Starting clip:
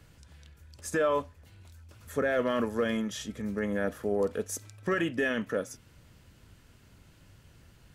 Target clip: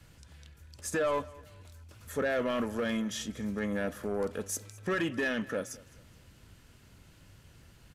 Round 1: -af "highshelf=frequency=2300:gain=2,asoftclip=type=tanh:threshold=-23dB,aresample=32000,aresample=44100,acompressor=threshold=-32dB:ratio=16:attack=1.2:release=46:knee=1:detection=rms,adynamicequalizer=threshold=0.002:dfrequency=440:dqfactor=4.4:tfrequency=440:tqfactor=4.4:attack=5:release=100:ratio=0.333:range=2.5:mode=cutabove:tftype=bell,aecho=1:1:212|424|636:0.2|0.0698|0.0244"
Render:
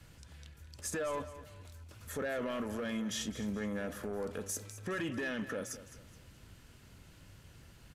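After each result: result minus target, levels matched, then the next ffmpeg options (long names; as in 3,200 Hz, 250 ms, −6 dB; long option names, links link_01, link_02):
downward compressor: peak gain reduction +7.5 dB; echo-to-direct +7.5 dB
-af "highshelf=frequency=2300:gain=2,asoftclip=type=tanh:threshold=-23dB,aresample=32000,aresample=44100,adynamicequalizer=threshold=0.002:dfrequency=440:dqfactor=4.4:tfrequency=440:tqfactor=4.4:attack=5:release=100:ratio=0.333:range=2.5:mode=cutabove:tftype=bell,aecho=1:1:212|424|636:0.2|0.0698|0.0244"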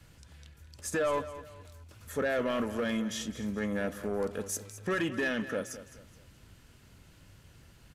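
echo-to-direct +7.5 dB
-af "highshelf=frequency=2300:gain=2,asoftclip=type=tanh:threshold=-23dB,aresample=32000,aresample=44100,adynamicequalizer=threshold=0.002:dfrequency=440:dqfactor=4.4:tfrequency=440:tqfactor=4.4:attack=5:release=100:ratio=0.333:range=2.5:mode=cutabove:tftype=bell,aecho=1:1:212|424|636:0.0841|0.0294|0.0103"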